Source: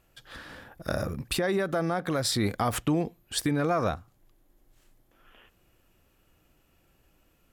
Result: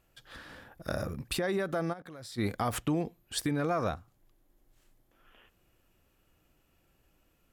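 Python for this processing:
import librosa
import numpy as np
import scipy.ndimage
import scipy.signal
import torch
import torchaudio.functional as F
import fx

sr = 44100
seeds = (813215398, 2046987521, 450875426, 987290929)

y = fx.level_steps(x, sr, step_db=21, at=(1.92, 2.37), fade=0.02)
y = F.gain(torch.from_numpy(y), -4.0).numpy()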